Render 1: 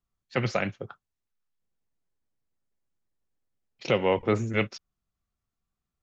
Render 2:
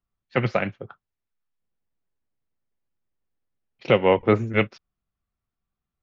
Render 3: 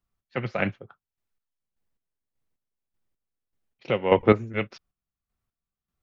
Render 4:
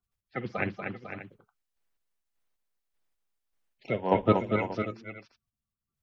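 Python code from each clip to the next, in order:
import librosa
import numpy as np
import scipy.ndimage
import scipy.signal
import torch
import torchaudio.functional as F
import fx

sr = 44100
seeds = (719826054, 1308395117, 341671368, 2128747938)

y1 = scipy.signal.sosfilt(scipy.signal.butter(2, 3200.0, 'lowpass', fs=sr, output='sos'), x)
y1 = fx.upward_expand(y1, sr, threshold_db=-33.0, expansion=1.5)
y1 = y1 * librosa.db_to_amplitude(7.0)
y2 = fx.chopper(y1, sr, hz=1.7, depth_pct=65, duty_pct=35)
y2 = y2 * librosa.db_to_amplitude(2.0)
y3 = fx.spec_quant(y2, sr, step_db=30)
y3 = fx.echo_multitap(y3, sr, ms=(52, 233, 238, 500, 584), db=(-17.5, -19.5, -6.0, -10.0, -15.0))
y3 = y3 * librosa.db_to_amplitude(-4.5)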